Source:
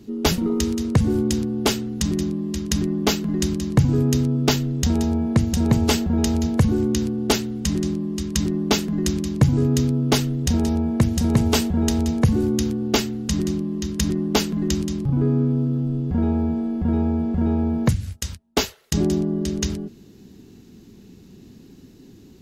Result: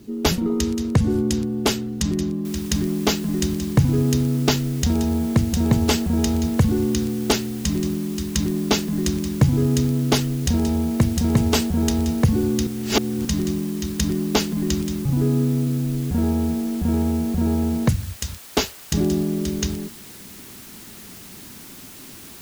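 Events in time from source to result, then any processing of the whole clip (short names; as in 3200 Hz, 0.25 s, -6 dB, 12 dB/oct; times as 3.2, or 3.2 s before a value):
2.45 noise floor step -61 dB -42 dB
12.67–13.25 reverse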